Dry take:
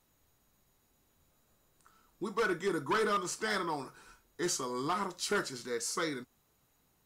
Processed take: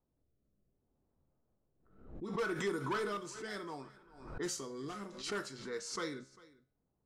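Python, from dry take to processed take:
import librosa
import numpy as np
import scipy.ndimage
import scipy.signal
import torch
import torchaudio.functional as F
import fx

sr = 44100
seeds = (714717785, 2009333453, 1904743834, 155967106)

y = fx.env_lowpass(x, sr, base_hz=670.0, full_db=-29.5)
y = fx.rotary(y, sr, hz=0.65)
y = fx.comb_fb(y, sr, f0_hz=67.0, decay_s=0.5, harmonics='all', damping=0.0, mix_pct=50)
y = y + 10.0 ** (-21.5 / 20.0) * np.pad(y, (int(398 * sr / 1000.0), 0))[:len(y)]
y = fx.pre_swell(y, sr, db_per_s=78.0)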